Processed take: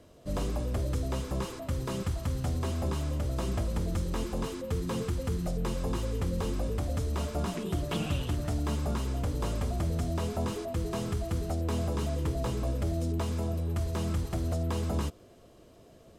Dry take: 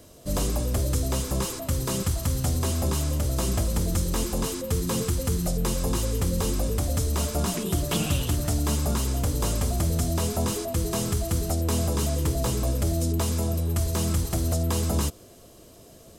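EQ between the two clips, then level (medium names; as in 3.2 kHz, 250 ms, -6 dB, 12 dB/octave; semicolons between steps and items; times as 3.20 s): tone controls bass -1 dB, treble -9 dB; treble shelf 9.9 kHz -7 dB; -4.5 dB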